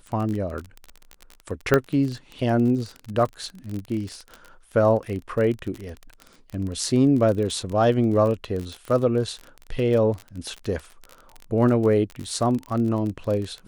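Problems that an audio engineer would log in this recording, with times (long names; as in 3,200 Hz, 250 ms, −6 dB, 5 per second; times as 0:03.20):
surface crackle 31 per second −28 dBFS
0:01.74: click −5 dBFS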